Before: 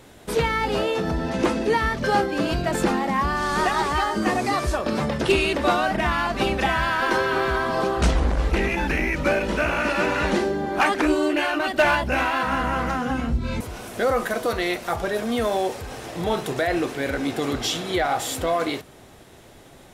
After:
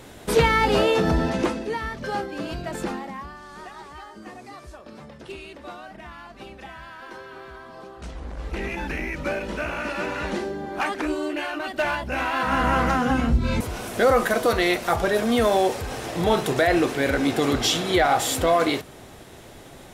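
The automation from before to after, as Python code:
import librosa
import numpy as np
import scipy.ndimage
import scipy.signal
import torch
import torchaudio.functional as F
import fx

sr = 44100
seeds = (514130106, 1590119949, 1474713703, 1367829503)

y = fx.gain(x, sr, db=fx.line((1.21, 4.0), (1.66, -7.5), (2.92, -7.5), (3.42, -18.5), (8.03, -18.5), (8.68, -6.0), (12.04, -6.0), (12.69, 3.5)))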